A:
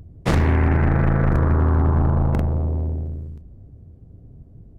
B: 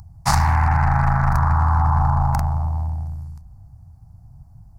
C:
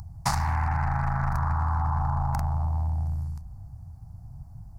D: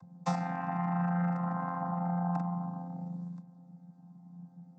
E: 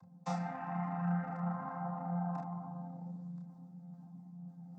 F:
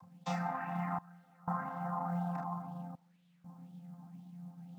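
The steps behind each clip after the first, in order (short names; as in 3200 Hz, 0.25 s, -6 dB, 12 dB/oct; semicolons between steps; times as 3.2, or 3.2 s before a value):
EQ curve 140 Hz 0 dB, 460 Hz -27 dB, 810 Hz +12 dB, 3300 Hz -6 dB, 4700 Hz +13 dB
compressor, threshold -25 dBFS, peak gain reduction 12 dB; gain +1.5 dB
chord vocoder bare fifth, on F3; gain -2 dB
chorus voices 4, 0.93 Hz, delay 30 ms, depth 3 ms; reverse; upward compressor, threshold -41 dBFS; reverse; gain -2.5 dB
step gate "xxxx..xx" 61 bpm -24 dB; companded quantiser 8-bit; LFO bell 2 Hz 980–3400 Hz +11 dB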